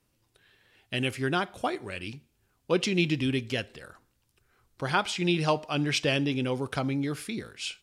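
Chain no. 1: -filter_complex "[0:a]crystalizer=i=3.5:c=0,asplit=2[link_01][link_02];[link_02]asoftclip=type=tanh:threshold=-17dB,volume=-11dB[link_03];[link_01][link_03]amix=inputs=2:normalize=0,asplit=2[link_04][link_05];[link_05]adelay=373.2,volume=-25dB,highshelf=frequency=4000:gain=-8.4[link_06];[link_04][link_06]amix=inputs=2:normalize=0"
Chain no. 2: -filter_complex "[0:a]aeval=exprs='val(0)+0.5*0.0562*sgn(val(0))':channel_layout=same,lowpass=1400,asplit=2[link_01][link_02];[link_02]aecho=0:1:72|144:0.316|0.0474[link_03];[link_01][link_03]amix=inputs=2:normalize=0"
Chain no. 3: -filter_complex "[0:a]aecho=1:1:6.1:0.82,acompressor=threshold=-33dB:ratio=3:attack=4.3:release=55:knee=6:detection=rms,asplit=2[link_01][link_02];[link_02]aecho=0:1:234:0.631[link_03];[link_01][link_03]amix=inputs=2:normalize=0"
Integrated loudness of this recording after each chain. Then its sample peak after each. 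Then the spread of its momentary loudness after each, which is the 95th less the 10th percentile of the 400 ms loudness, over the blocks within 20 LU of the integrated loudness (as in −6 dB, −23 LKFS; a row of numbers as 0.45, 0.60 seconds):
−24.0, −27.5, −34.0 LKFS; −6.0, −12.5, −20.0 dBFS; 11, 11, 10 LU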